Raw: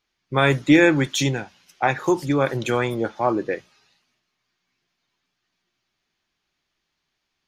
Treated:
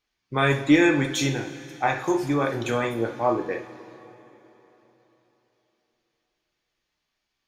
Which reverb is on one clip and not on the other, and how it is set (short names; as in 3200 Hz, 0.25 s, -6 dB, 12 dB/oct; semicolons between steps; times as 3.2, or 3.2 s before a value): two-slope reverb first 0.43 s, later 3.8 s, from -18 dB, DRR 2.5 dB; gain -4.5 dB